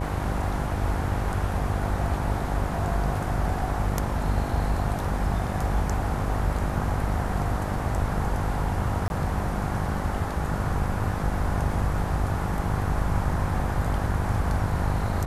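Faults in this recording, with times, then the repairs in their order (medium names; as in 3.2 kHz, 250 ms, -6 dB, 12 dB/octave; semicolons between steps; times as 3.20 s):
buzz 50 Hz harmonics 19 -30 dBFS
9.08–9.10 s: dropout 21 ms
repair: de-hum 50 Hz, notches 19; interpolate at 9.08 s, 21 ms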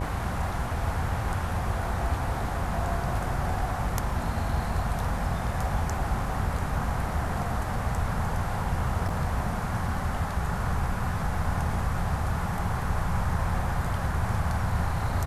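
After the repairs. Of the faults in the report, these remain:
nothing left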